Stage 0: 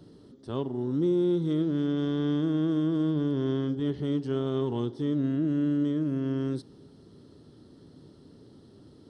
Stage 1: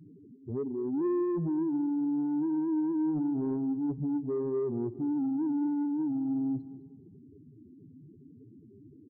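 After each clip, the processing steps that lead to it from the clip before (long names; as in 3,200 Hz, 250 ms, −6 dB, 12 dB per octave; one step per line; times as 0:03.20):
expanding power law on the bin magnitudes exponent 3.9
soft clipping −25 dBFS, distortion −18 dB
repeating echo 205 ms, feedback 29%, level −16.5 dB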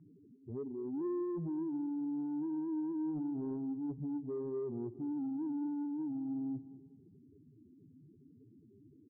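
low-pass filter 1,500 Hz 12 dB per octave
level −7.5 dB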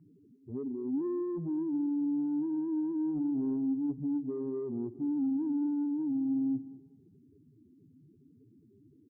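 dynamic equaliser 260 Hz, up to +8 dB, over −52 dBFS, Q 2.3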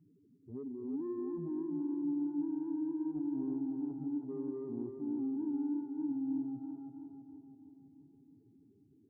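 tape delay 328 ms, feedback 69%, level −4 dB, low-pass 1,000 Hz
level −6 dB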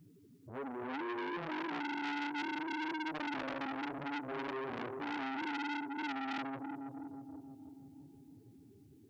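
parametric band 240 Hz −11.5 dB 2.4 octaves
saturating transformer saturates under 2,100 Hz
level +15 dB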